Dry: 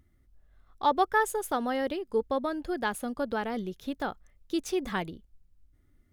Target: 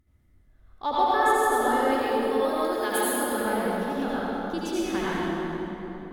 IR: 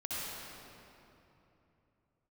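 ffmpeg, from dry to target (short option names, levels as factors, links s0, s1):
-filter_complex "[0:a]asettb=1/sr,asplit=3[s0][s1][s2];[s0]atrim=end=1.914[s3];[s1]atrim=start=1.91:end=3.32,asetpts=PTS-STARTPTS,afade=t=in:d=0.004:c=qsin,afade=t=out:st=1.406:d=0.004:c=qsin,aemphasis=mode=production:type=bsi[s4];[s2]atrim=start=3.316[s5];[s3][s4]acrossfade=d=0.004:c1=hsin:c2=qsin[s6];[s6][s5]acrossfade=d=0.004:c1=qsin:c2=hsin[s7];[1:a]atrim=start_sample=2205,asetrate=35721,aresample=44100[s8];[s7][s8]afir=irnorm=-1:irlink=0"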